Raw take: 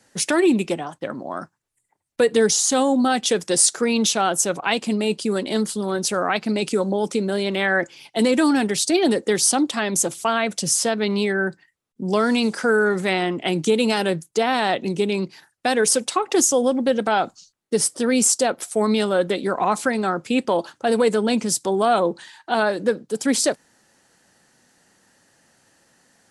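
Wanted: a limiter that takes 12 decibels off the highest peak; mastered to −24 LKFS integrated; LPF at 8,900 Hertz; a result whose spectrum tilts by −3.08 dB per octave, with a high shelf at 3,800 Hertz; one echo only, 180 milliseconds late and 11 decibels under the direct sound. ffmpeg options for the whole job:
ffmpeg -i in.wav -af "lowpass=8900,highshelf=frequency=3800:gain=6,alimiter=limit=-12.5dB:level=0:latency=1,aecho=1:1:180:0.282,volume=-1.5dB" out.wav

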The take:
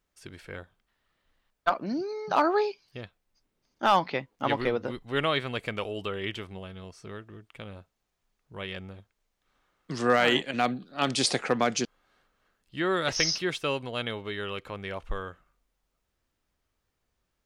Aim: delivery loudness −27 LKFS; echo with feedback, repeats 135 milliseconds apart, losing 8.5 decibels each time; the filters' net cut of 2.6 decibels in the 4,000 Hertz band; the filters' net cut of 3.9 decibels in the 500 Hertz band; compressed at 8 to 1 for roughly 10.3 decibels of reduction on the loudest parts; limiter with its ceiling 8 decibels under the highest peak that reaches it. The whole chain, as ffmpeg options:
ffmpeg -i in.wav -af "equalizer=frequency=500:width_type=o:gain=-5,equalizer=frequency=4000:width_type=o:gain=-3.5,acompressor=threshold=-30dB:ratio=8,alimiter=level_in=1dB:limit=-24dB:level=0:latency=1,volume=-1dB,aecho=1:1:135|270|405|540:0.376|0.143|0.0543|0.0206,volume=11dB" out.wav

